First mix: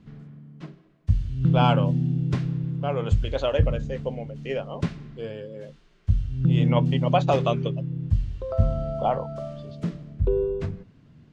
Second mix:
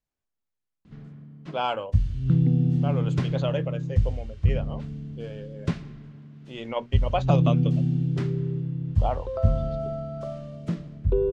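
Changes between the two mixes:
speech -4.0 dB; background: entry +0.85 s

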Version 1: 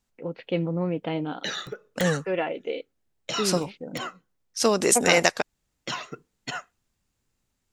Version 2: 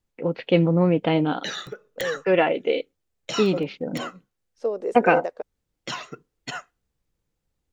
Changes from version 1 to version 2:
first voice +8.0 dB; second voice: add band-pass filter 490 Hz, Q 3.7

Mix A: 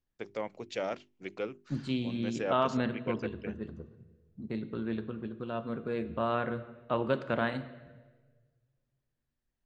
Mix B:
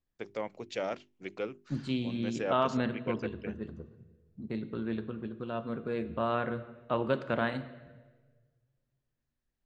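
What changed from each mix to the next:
no change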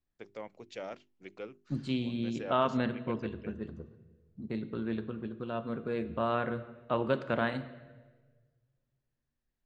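first voice -7.0 dB

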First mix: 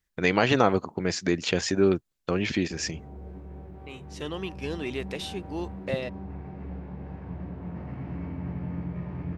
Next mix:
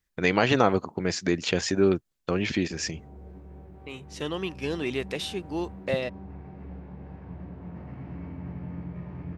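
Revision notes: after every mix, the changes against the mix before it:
second voice +3.0 dB; background -3.5 dB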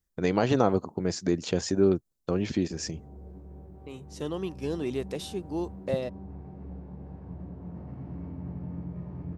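master: add peaking EQ 2.3 kHz -12 dB 1.8 oct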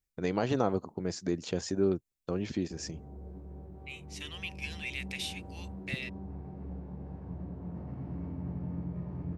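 first voice -5.5 dB; second voice: add resonant high-pass 2.3 kHz, resonance Q 4.9

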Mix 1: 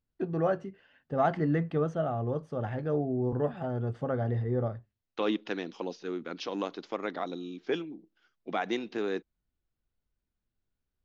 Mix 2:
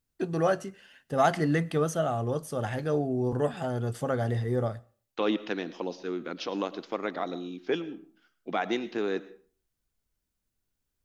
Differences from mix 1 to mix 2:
first voice: remove tape spacing loss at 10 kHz 35 dB; reverb: on, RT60 0.45 s

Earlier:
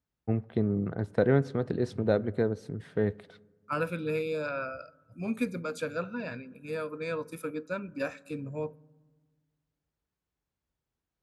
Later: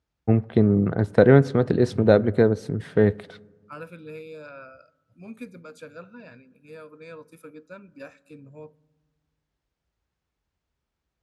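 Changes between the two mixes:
first voice +9.5 dB; second voice -8.5 dB

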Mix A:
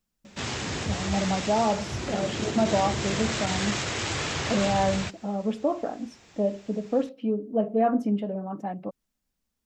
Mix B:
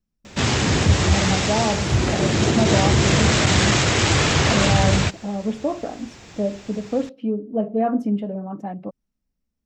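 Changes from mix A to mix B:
second voice -11.0 dB; background +10.0 dB; master: add bass shelf 290 Hz +5.5 dB

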